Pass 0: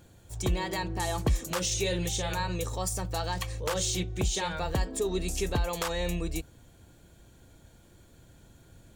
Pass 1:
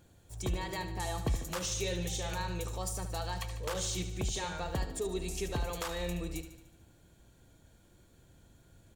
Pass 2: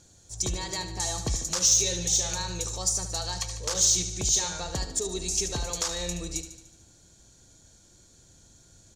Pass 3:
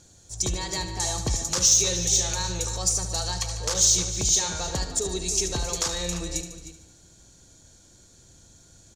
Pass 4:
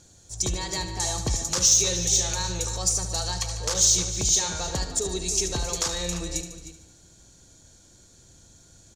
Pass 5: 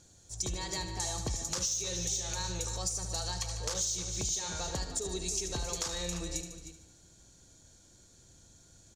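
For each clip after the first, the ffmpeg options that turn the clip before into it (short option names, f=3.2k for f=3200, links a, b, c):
-af "aecho=1:1:74|148|222|296|370|444|518:0.299|0.17|0.097|0.0553|0.0315|0.018|0.0102,volume=-6dB"
-af "lowpass=f=6.4k:t=q:w=3.6,aexciter=amount=1.9:drive=7.6:freq=4k,volume=1.5dB"
-filter_complex "[0:a]asplit=2[a][b];[b]adelay=309,volume=-10dB,highshelf=f=4k:g=-6.95[c];[a][c]amix=inputs=2:normalize=0,volume=2.5dB"
-af anull
-af "acompressor=threshold=-25dB:ratio=6,volume=-5.5dB"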